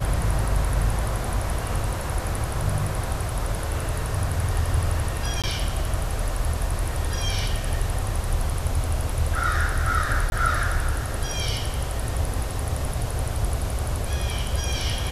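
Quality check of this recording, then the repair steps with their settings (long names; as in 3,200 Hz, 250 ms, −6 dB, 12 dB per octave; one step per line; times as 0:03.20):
0:05.42–0:05.44: drop-out 17 ms
0:10.30–0:10.32: drop-out 21 ms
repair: repair the gap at 0:05.42, 17 ms
repair the gap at 0:10.30, 21 ms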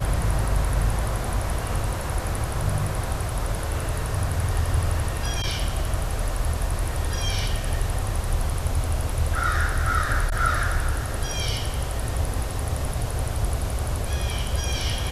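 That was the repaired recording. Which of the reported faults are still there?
none of them is left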